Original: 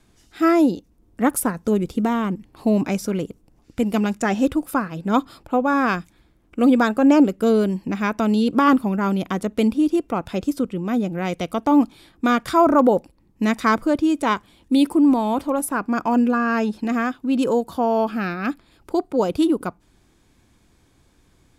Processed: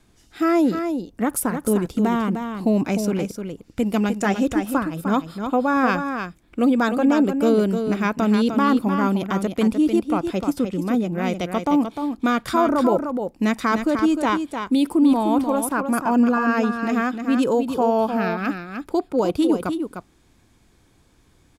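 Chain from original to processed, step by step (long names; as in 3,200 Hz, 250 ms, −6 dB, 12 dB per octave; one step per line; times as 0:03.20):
brickwall limiter −11 dBFS, peak gain reduction 6 dB
on a send: single-tap delay 303 ms −7 dB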